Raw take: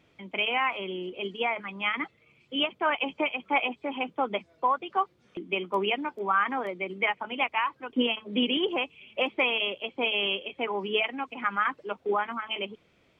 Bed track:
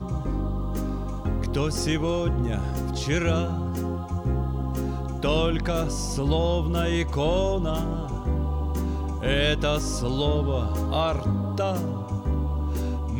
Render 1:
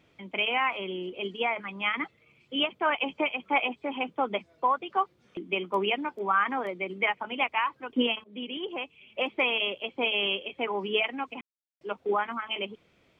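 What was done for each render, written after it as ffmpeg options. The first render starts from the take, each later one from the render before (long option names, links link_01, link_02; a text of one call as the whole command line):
ffmpeg -i in.wav -filter_complex "[0:a]asplit=4[link_01][link_02][link_03][link_04];[link_01]atrim=end=8.24,asetpts=PTS-STARTPTS,afade=type=out:start_time=8.236:duration=0.004:curve=hsin:silence=0.149624[link_05];[link_02]atrim=start=8.24:end=11.41,asetpts=PTS-STARTPTS,afade=type=in:duration=1.31:silence=0.149624,afade=type=out:start_time=3.166:duration=0.004:curve=hsin[link_06];[link_03]atrim=start=11.41:end=11.81,asetpts=PTS-STARTPTS,volume=0[link_07];[link_04]atrim=start=11.81,asetpts=PTS-STARTPTS,afade=type=in:duration=0.004:curve=hsin[link_08];[link_05][link_06][link_07][link_08]concat=n=4:v=0:a=1" out.wav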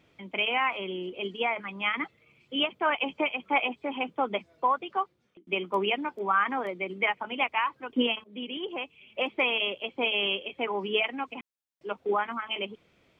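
ffmpeg -i in.wav -filter_complex "[0:a]asplit=2[link_01][link_02];[link_01]atrim=end=5.47,asetpts=PTS-STARTPTS,afade=type=out:start_time=4.84:duration=0.63[link_03];[link_02]atrim=start=5.47,asetpts=PTS-STARTPTS,afade=type=in:duration=0.004:curve=hsin[link_04];[link_03][link_04]concat=n=2:v=0:a=1" out.wav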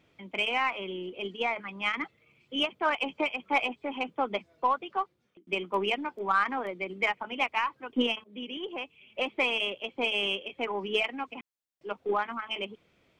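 ffmpeg -i in.wav -af "aeval=exprs='0.237*(cos(1*acos(clip(val(0)/0.237,-1,1)))-cos(1*PI/2))+0.0133*(cos(3*acos(clip(val(0)/0.237,-1,1)))-cos(3*PI/2))+0.00168*(cos(7*acos(clip(val(0)/0.237,-1,1)))-cos(7*PI/2))+0.00188*(cos(8*acos(clip(val(0)/0.237,-1,1)))-cos(8*PI/2))':channel_layout=same" out.wav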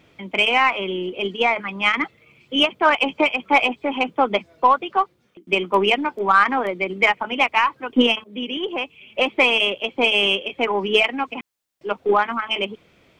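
ffmpeg -i in.wav -af "volume=11dB,alimiter=limit=-3dB:level=0:latency=1" out.wav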